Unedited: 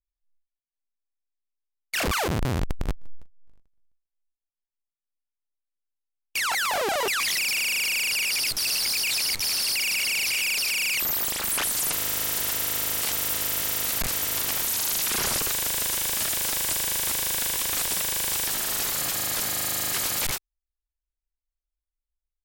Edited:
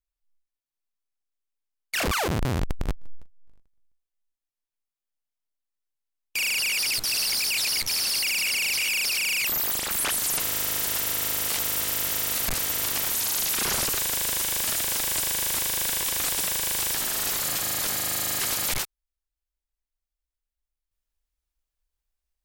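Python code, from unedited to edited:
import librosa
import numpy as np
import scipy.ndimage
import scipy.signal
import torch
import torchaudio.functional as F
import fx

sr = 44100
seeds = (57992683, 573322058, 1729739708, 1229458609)

y = fx.edit(x, sr, fx.cut(start_s=6.37, length_s=1.53), tone=tone)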